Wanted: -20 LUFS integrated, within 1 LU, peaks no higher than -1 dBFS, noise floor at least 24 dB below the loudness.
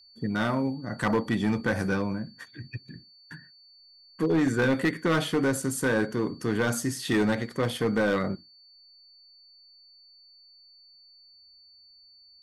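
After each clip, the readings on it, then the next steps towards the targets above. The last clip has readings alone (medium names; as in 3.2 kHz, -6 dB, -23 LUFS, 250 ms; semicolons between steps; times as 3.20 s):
clipped samples 1.0%; clipping level -18.5 dBFS; steady tone 4.5 kHz; tone level -53 dBFS; loudness -27.0 LUFS; peak level -18.5 dBFS; loudness target -20.0 LUFS
-> clip repair -18.5 dBFS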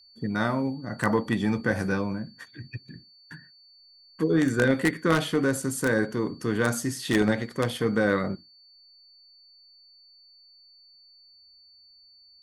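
clipped samples 0.0%; steady tone 4.5 kHz; tone level -53 dBFS
-> band-stop 4.5 kHz, Q 30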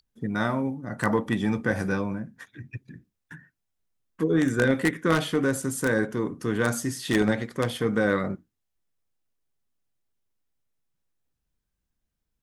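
steady tone not found; loudness -26.0 LUFS; peak level -9.5 dBFS; loudness target -20.0 LUFS
-> trim +6 dB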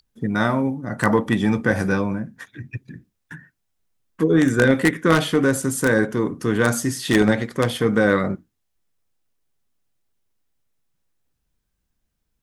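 loudness -20.0 LUFS; peak level -3.5 dBFS; noise floor -75 dBFS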